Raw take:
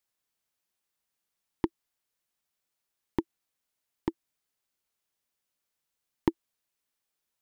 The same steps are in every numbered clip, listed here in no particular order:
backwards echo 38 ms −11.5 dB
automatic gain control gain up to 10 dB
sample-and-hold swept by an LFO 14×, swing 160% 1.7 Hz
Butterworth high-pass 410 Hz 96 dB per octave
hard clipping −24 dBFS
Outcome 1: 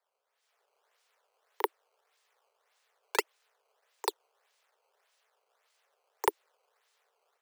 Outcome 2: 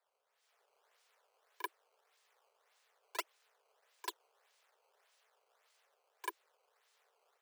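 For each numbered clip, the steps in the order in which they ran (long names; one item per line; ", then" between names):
backwards echo, then sample-and-hold swept by an LFO, then Butterworth high-pass, then hard clipping, then automatic gain control
automatic gain control, then hard clipping, then backwards echo, then sample-and-hold swept by an LFO, then Butterworth high-pass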